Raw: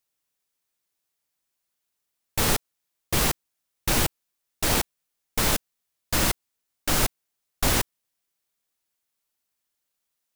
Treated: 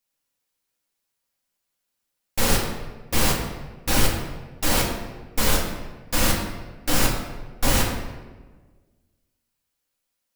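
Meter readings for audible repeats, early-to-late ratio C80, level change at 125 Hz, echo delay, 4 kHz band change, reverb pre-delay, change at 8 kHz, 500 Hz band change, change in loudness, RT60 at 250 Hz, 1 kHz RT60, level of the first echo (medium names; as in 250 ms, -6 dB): no echo, 5.5 dB, +3.5 dB, no echo, +2.0 dB, 4 ms, +1.0 dB, +3.5 dB, +1.5 dB, 1.6 s, 1.2 s, no echo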